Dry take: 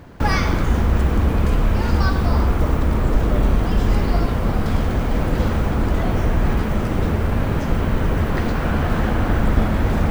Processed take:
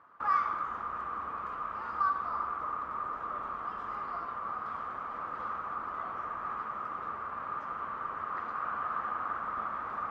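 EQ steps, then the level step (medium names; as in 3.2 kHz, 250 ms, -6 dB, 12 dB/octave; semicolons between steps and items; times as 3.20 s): band-pass filter 1.2 kHz, Q 12; +4.0 dB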